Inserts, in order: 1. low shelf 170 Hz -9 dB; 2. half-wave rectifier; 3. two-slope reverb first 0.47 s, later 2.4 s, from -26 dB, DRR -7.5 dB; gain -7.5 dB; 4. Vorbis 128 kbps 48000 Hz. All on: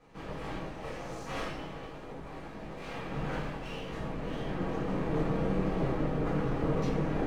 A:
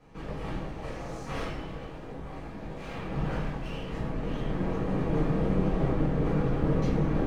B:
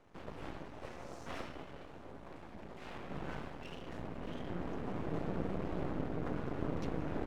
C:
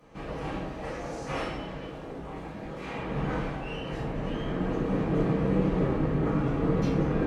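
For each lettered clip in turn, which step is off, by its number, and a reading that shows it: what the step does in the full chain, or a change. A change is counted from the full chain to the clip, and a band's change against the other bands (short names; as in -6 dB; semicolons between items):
1, 125 Hz band +4.5 dB; 3, crest factor change +3.5 dB; 2, distortion 0 dB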